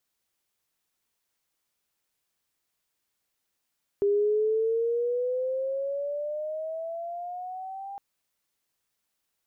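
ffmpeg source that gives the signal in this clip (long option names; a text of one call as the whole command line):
ffmpeg -f lavfi -i "aevalsrc='pow(10,(-20-15.5*t/3.96)/20)*sin(2*PI*401*3.96/(12*log(2)/12)*(exp(12*log(2)/12*t/3.96)-1))':duration=3.96:sample_rate=44100" out.wav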